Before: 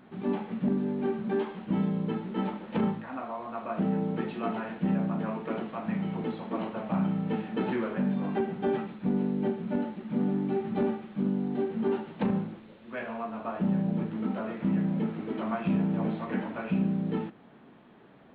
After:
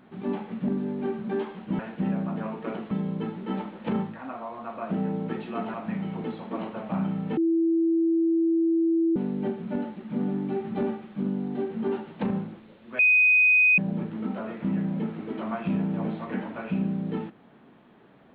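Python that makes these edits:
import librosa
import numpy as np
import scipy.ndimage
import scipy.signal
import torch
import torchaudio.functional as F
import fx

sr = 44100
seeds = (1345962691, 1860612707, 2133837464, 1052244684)

y = fx.edit(x, sr, fx.move(start_s=4.62, length_s=1.12, to_s=1.79),
    fx.bleep(start_s=7.37, length_s=1.79, hz=330.0, db=-19.5),
    fx.bleep(start_s=12.99, length_s=0.79, hz=2500.0, db=-15.5), tone=tone)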